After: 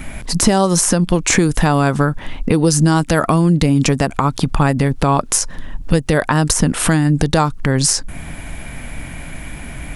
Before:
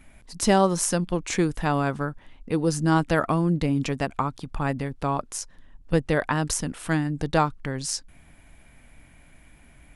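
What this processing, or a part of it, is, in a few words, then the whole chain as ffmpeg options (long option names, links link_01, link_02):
mastering chain: -filter_complex "[0:a]equalizer=frequency=160:width_type=o:width=0.77:gain=2.5,acrossover=split=2200|4900[link_01][link_02][link_03];[link_01]acompressor=threshold=-29dB:ratio=4[link_04];[link_02]acompressor=threshold=-51dB:ratio=4[link_05];[link_03]acompressor=threshold=-34dB:ratio=4[link_06];[link_04][link_05][link_06]amix=inputs=3:normalize=0,acompressor=threshold=-35dB:ratio=2,alimiter=level_in=23.5dB:limit=-1dB:release=50:level=0:latency=1,volume=-1dB"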